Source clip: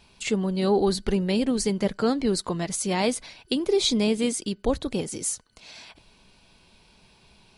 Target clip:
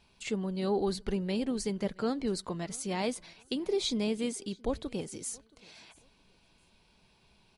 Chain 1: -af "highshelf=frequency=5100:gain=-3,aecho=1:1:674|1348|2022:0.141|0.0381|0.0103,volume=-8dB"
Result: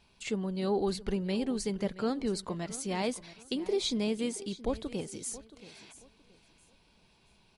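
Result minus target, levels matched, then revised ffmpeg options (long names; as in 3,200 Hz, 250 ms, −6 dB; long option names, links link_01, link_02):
echo-to-direct +9 dB
-af "highshelf=frequency=5100:gain=-3,aecho=1:1:674|1348:0.0501|0.0135,volume=-8dB"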